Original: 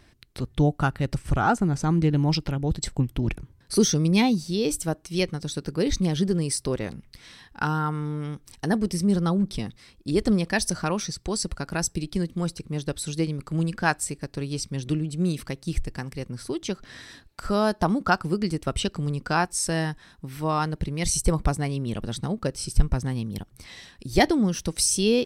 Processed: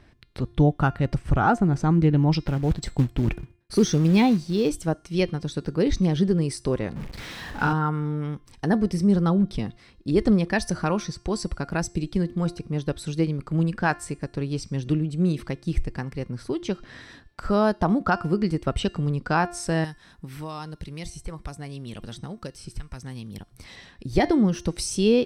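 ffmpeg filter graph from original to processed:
ffmpeg -i in.wav -filter_complex "[0:a]asettb=1/sr,asplit=3[link_01][link_02][link_03];[link_01]atrim=end=2.454[link_04];[link_02]atrim=start=2.45:end=4.69,asetpts=PTS-STARTPTS,afade=type=in:duration=0.004:curve=qsin,afade=type=out:start_time=2.236:duration=0.004:curve=qsin,agate=range=-33dB:threshold=-48dB:ratio=3:release=100:detection=peak,acrusher=bits=5:mode=log:mix=0:aa=0.000001[link_05];[link_03]atrim=start=4.686[link_06];[link_04][link_05]acrossfade=duration=0.004:curve1=hsin:curve2=qsin[link_07];[link_07][link_06]acrossfade=duration=0.004:curve1=qsin:curve2=hsin,asettb=1/sr,asplit=3[link_08][link_09][link_10];[link_08]atrim=end=6.964[link_11];[link_09]atrim=start=6.96:end=7.73,asetpts=PTS-STARTPTS,afade=type=in:duration=0.004:curve=qsin,afade=type=out:start_time=0.766:duration=0.004:curve=qsin,aeval=exprs='val(0)+0.5*0.02*sgn(val(0))':channel_layout=same,asplit=2[link_12][link_13];[link_13]adelay=43,volume=-4dB[link_14];[link_12][link_14]amix=inputs=2:normalize=0,atrim=end_sample=33957[link_15];[link_10]atrim=start=7.726[link_16];[link_11][link_15]acrossfade=duration=0.004:curve1=hsin:curve2=qsin[link_17];[link_17][link_16]acrossfade=duration=0.004:curve1=qsin:curve2=hsin,asettb=1/sr,asplit=3[link_18][link_19][link_20];[link_18]atrim=end=19.844[link_21];[link_19]atrim=start=19.84:end=23.76,asetpts=PTS-STARTPTS,afade=type=in:duration=0.004:curve=qsin,afade=type=out:start_time=3.916:duration=0.004:curve=qsin,aemphasis=mode=production:type=cd,acrossover=split=1200|3000[link_22][link_23][link_24];[link_22]acompressor=threshold=-37dB:ratio=4[link_25];[link_23]acompressor=threshold=-49dB:ratio=4[link_26];[link_24]acompressor=threshold=-40dB:ratio=4[link_27];[link_25][link_26][link_27]amix=inputs=3:normalize=0[link_28];[link_20]atrim=start=23.756[link_29];[link_21][link_28]acrossfade=duration=0.004:curve1=hsin:curve2=qsin[link_30];[link_30][link_29]acrossfade=duration=0.004:curve1=qsin:curve2=hsin,lowpass=frequency=2200:poles=1,bandreject=frequency=349.5:width_type=h:width=4,bandreject=frequency=699:width_type=h:width=4,bandreject=frequency=1048.5:width_type=h:width=4,bandreject=frequency=1398:width_type=h:width=4,bandreject=frequency=1747.5:width_type=h:width=4,bandreject=frequency=2097:width_type=h:width=4,bandreject=frequency=2446.5:width_type=h:width=4,bandreject=frequency=2796:width_type=h:width=4,bandreject=frequency=3145.5:width_type=h:width=4,bandreject=frequency=3495:width_type=h:width=4,bandreject=frequency=3844.5:width_type=h:width=4,bandreject=frequency=4194:width_type=h:width=4,bandreject=frequency=4543.5:width_type=h:width=4,bandreject=frequency=4893:width_type=h:width=4,bandreject=frequency=5242.5:width_type=h:width=4,bandreject=frequency=5592:width_type=h:width=4,bandreject=frequency=5941.5:width_type=h:width=4,bandreject=frequency=6291:width_type=h:width=4,bandreject=frequency=6640.5:width_type=h:width=4,bandreject=frequency=6990:width_type=h:width=4,bandreject=frequency=7339.5:width_type=h:width=4,bandreject=frequency=7689:width_type=h:width=4,bandreject=frequency=8038.5:width_type=h:width=4,bandreject=frequency=8388:width_type=h:width=4,bandreject=frequency=8737.5:width_type=h:width=4,bandreject=frequency=9087:width_type=h:width=4,bandreject=frequency=9436.5:width_type=h:width=4,bandreject=frequency=9786:width_type=h:width=4,bandreject=frequency=10135.5:width_type=h:width=4,bandreject=frequency=10485:width_type=h:width=4,bandreject=frequency=10834.5:width_type=h:width=4,bandreject=frequency=11184:width_type=h:width=4,alimiter=level_in=10dB:limit=-1dB:release=50:level=0:latency=1,volume=-7.5dB" out.wav

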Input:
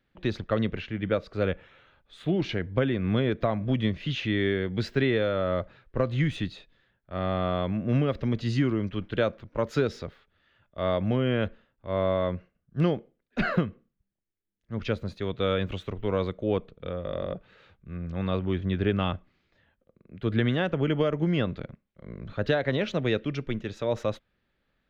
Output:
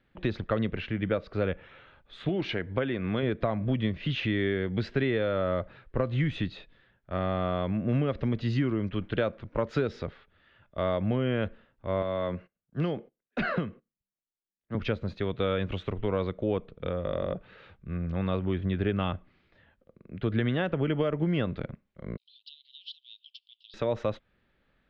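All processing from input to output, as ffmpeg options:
ffmpeg -i in.wav -filter_complex "[0:a]asettb=1/sr,asplit=3[link_01][link_02][link_03];[link_01]atrim=end=2.294[link_04];[link_02]atrim=start=2.29:end=3.23,asetpts=PTS-STARTPTS,afade=type=in:duration=0.004:curve=qsin,afade=type=out:start_time=0.936:duration=0.004:curve=qsin,lowshelf=frequency=250:gain=-8.5,acompressor=mode=upward:threshold=-34dB:ratio=2.5:attack=3.2:release=140:knee=2.83:detection=peak[link_05];[link_03]atrim=start=3.226[link_06];[link_04][link_05]acrossfade=duration=0.004:curve1=hsin:curve2=qsin[link_07];[link_07][link_06]acrossfade=duration=0.004:curve1=qsin:curve2=hsin,asettb=1/sr,asplit=3[link_08][link_09][link_10];[link_08]atrim=end=12.024[link_11];[link_09]atrim=start=12.02:end=14.75,asetpts=PTS-STARTPTS,afade=type=in:duration=0.004:curve=qsin,afade=type=out:start_time=2.726:duration=0.004:curve=qsin,agate=range=-16dB:threshold=-59dB:ratio=16:release=100:detection=peak,lowshelf=frequency=120:gain=-11,acrossover=split=170|3000[link_12][link_13][link_14];[link_13]acompressor=threshold=-28dB:ratio=3:attack=3.2:release=140:knee=2.83:detection=peak[link_15];[link_12][link_15][link_14]amix=inputs=3:normalize=0[link_16];[link_10]atrim=start=14.746[link_17];[link_11][link_16]acrossfade=duration=0.004:curve1=hsin:curve2=qsin[link_18];[link_18][link_17]acrossfade=duration=0.004:curve1=qsin:curve2=hsin,asettb=1/sr,asplit=3[link_19][link_20][link_21];[link_19]atrim=end=22.174[link_22];[link_20]atrim=start=22.17:end=23.74,asetpts=PTS-STARTPTS,afade=type=in:duration=0.004:curve=qsin,afade=type=out:start_time=1.566:duration=0.004:curve=qsin,acompressor=threshold=-32dB:ratio=12:attack=3.2:release=140:knee=1:detection=peak,asuperpass=centerf=4000:order=12:qfactor=1.7[link_23];[link_21]atrim=start=23.736[link_24];[link_22][link_23]acrossfade=duration=0.004:curve1=hsin:curve2=qsin[link_25];[link_25][link_24]acrossfade=duration=0.004:curve1=qsin:curve2=hsin,acompressor=threshold=-33dB:ratio=2,lowpass=3700,volume=4.5dB" out.wav

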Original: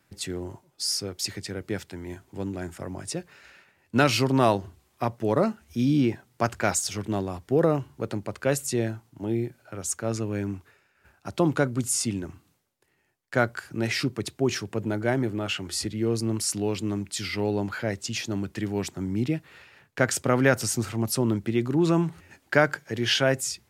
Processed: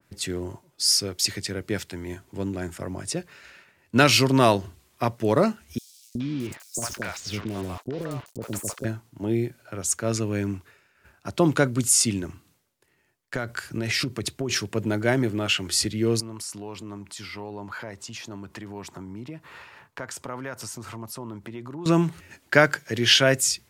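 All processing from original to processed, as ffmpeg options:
ffmpeg -i in.wav -filter_complex "[0:a]asettb=1/sr,asplit=3[link_01][link_02][link_03];[link_01]atrim=end=5.784[link_04];[link_02]atrim=start=5.78:end=8.85,asetpts=PTS-STARTPTS,afade=type=in:duration=0.004:curve=qsin,afade=type=out:start_time=3.066:duration=0.004:curve=qsin,acompressor=threshold=-27dB:ratio=16:attack=3.2:release=140:knee=1:detection=peak,acrusher=bits=6:mix=0:aa=0.5,acrossover=split=600|5100[link_05][link_06][link_07];[link_05]adelay=370[link_08];[link_06]adelay=420[link_09];[link_08][link_09][link_07]amix=inputs=3:normalize=0,atrim=end_sample=135387[link_10];[link_03]atrim=start=8.846[link_11];[link_04][link_10]acrossfade=duration=0.004:curve1=hsin:curve2=qsin[link_12];[link_12][link_11]acrossfade=duration=0.004:curve1=qsin:curve2=hsin,asettb=1/sr,asplit=3[link_13][link_14][link_15];[link_13]atrim=end=13.354[link_16];[link_14]atrim=start=13.35:end=14.5,asetpts=PTS-STARTPTS,afade=type=in:duration=0.004:curve=qsin,afade=type=out:start_time=1.146:duration=0.004:curve=qsin,acompressor=threshold=-26dB:ratio=10:attack=3.2:release=140:knee=1:detection=peak,lowshelf=frequency=67:gain=9[link_17];[link_15]atrim=start=14.496[link_18];[link_16][link_17]acrossfade=duration=0.004:curve1=hsin:curve2=qsin[link_19];[link_19][link_18]acrossfade=duration=0.004:curve1=qsin:curve2=hsin,asettb=1/sr,asplit=3[link_20][link_21][link_22];[link_20]atrim=end=16.204[link_23];[link_21]atrim=start=16.2:end=21.86,asetpts=PTS-STARTPTS,afade=type=in:duration=0.004:curve=qsin,afade=type=out:start_time=5.656:duration=0.004:curve=qsin,acompressor=threshold=-42dB:ratio=3:attack=3.2:release=140:knee=1:detection=peak,equalizer=frequency=970:width_type=o:width=0.93:gain=11[link_24];[link_22]atrim=start=21.856[link_25];[link_23][link_24]acrossfade=duration=0.004:curve1=hsin:curve2=qsin[link_26];[link_26][link_25]acrossfade=duration=0.004:curve1=qsin:curve2=hsin,bandreject=frequency=790:width=12,adynamicequalizer=threshold=0.0112:dfrequency=1800:dqfactor=0.7:tfrequency=1800:tqfactor=0.7:attack=5:release=100:ratio=0.375:range=2.5:mode=boostabove:tftype=highshelf,volume=2.5dB" out.wav

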